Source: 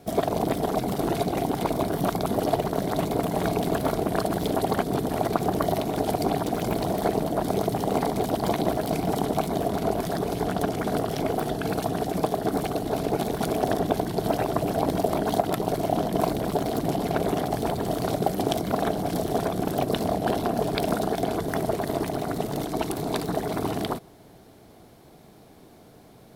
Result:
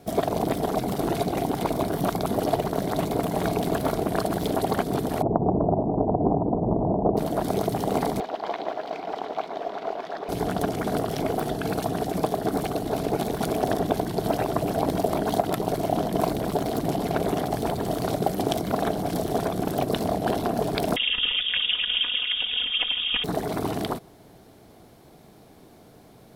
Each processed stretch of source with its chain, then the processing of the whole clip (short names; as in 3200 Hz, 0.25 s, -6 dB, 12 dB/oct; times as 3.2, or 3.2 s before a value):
5.22–7.17 steep low-pass 970 Hz 72 dB/oct + low shelf 410 Hz +5 dB + Doppler distortion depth 0.25 ms
8.2–10.29 HPF 590 Hz + modulation noise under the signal 17 dB + air absorption 230 m
20.96–23.24 inverted band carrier 3500 Hz + comb 4.1 ms, depth 91%
whole clip: dry